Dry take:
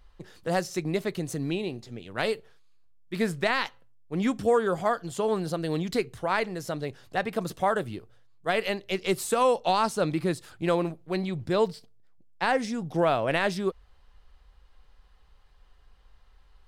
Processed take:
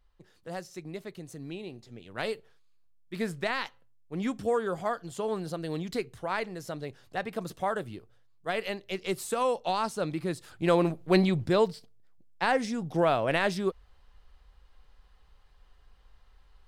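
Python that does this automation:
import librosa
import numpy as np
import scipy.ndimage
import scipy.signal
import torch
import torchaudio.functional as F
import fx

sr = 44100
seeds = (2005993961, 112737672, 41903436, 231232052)

y = fx.gain(x, sr, db=fx.line((1.33, -11.5), (2.15, -5.0), (10.26, -5.0), (11.17, 7.5), (11.66, -1.0)))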